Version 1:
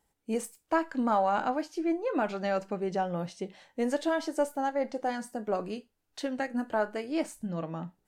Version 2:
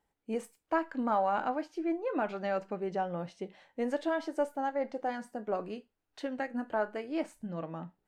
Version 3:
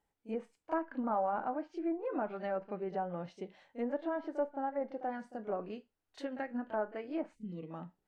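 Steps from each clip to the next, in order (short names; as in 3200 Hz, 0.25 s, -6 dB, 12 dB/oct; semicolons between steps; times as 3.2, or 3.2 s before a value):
tone controls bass -3 dB, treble -10 dB; gain -2.5 dB
treble ducked by the level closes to 1300 Hz, closed at -28 dBFS; spectral gain 7.36–7.71, 500–1900 Hz -22 dB; reverse echo 33 ms -13.5 dB; gain -3.5 dB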